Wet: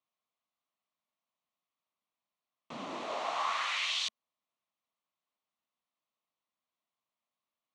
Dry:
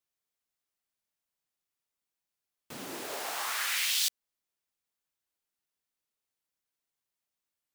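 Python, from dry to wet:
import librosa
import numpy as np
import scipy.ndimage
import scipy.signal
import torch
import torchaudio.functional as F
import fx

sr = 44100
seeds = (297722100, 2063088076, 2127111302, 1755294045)

y = fx.cabinet(x, sr, low_hz=140.0, low_slope=12, high_hz=5300.0, hz=(220.0, 400.0, 650.0, 1100.0, 1600.0, 5000.0), db=(4, -6, 6, 10, -8, -9))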